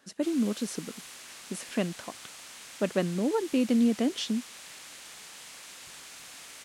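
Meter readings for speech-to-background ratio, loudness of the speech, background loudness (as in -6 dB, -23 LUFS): 14.5 dB, -29.5 LUFS, -44.0 LUFS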